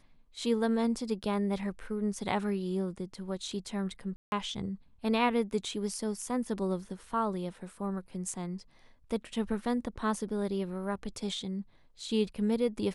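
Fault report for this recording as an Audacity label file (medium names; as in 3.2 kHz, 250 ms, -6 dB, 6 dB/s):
4.160000	4.320000	dropout 161 ms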